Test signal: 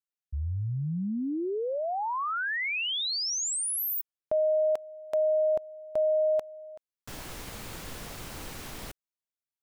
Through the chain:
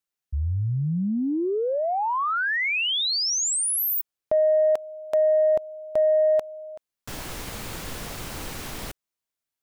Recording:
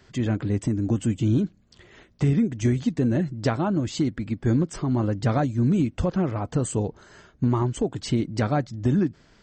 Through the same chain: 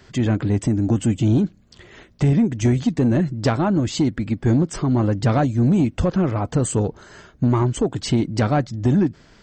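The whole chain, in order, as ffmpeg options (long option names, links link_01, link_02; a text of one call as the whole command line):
ffmpeg -i in.wav -af "asoftclip=type=tanh:threshold=-15.5dB,volume=6dB" out.wav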